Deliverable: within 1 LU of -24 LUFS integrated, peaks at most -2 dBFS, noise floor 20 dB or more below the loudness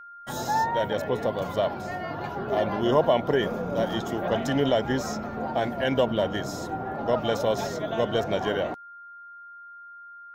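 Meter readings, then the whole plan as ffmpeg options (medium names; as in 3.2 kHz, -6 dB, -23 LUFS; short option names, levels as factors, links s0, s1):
steady tone 1.4 kHz; tone level -42 dBFS; loudness -26.5 LUFS; peak level -9.0 dBFS; loudness target -24.0 LUFS
-> -af "bandreject=f=1400:w=30"
-af "volume=1.33"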